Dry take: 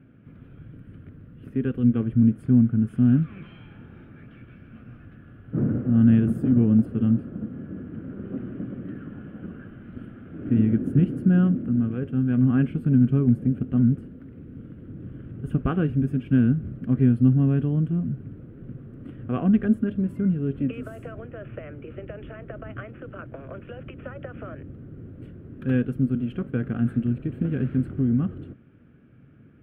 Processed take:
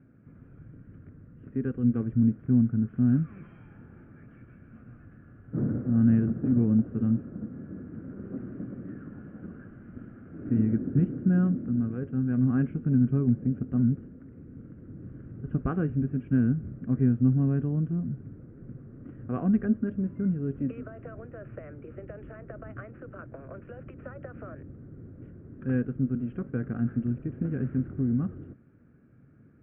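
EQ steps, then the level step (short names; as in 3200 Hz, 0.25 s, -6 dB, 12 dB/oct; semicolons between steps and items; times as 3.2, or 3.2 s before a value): LPF 2000 Hz 24 dB/oct; -4.5 dB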